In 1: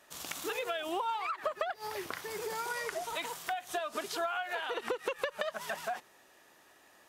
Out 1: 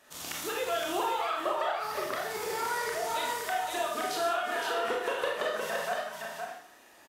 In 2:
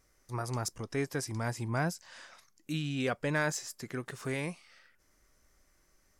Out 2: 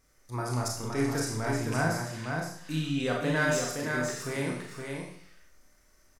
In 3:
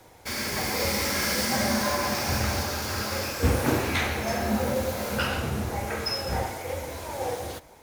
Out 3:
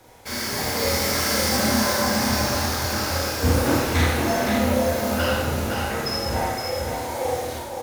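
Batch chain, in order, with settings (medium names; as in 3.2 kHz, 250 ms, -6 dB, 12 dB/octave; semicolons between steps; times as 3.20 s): rattle on loud lows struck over -29 dBFS, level -28 dBFS; dynamic bell 2.4 kHz, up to -6 dB, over -49 dBFS, Q 4.5; delay 517 ms -5 dB; Schroeder reverb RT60 0.59 s, combs from 25 ms, DRR -1.5 dB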